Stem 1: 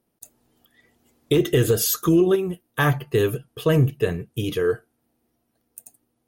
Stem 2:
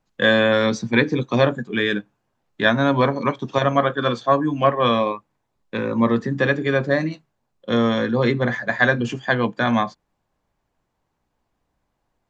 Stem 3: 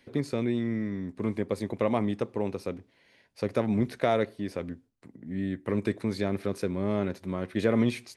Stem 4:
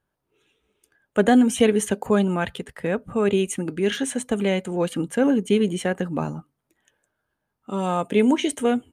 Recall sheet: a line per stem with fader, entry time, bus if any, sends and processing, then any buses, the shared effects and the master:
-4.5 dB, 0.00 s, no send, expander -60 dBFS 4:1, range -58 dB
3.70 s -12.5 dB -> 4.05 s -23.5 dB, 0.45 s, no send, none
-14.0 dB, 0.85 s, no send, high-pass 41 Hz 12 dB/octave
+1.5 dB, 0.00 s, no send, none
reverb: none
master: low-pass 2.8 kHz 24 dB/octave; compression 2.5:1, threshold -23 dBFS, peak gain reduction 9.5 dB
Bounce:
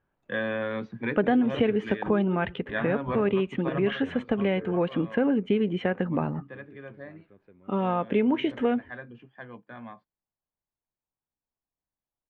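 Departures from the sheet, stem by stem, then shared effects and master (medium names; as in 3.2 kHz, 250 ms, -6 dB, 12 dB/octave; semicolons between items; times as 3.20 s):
stem 1 -4.5 dB -> -16.5 dB; stem 2: entry 0.45 s -> 0.10 s; stem 3 -14.0 dB -> -26.0 dB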